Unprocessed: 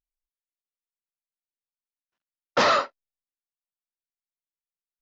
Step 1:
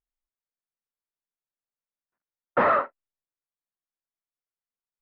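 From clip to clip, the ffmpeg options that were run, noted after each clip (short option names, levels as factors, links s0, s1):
-af "lowpass=f=1900:w=0.5412,lowpass=f=1900:w=1.3066"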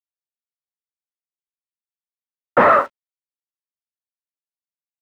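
-af "aeval=exprs='sgn(val(0))*max(abs(val(0))-0.002,0)':c=same,volume=2.66"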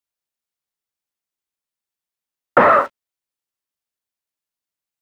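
-af "acompressor=threshold=0.141:ratio=4,volume=2.24"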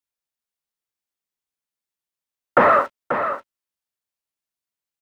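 -af "aecho=1:1:536:0.376,volume=0.75"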